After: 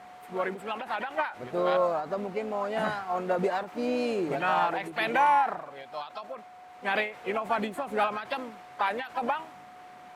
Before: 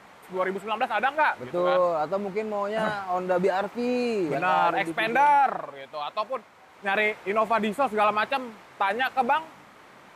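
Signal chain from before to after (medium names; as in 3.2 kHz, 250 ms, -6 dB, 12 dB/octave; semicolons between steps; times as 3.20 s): harmony voices +3 st -18 dB, +4 st -12 dB; whistle 730 Hz -44 dBFS; endings held to a fixed fall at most 140 dB/s; trim -3 dB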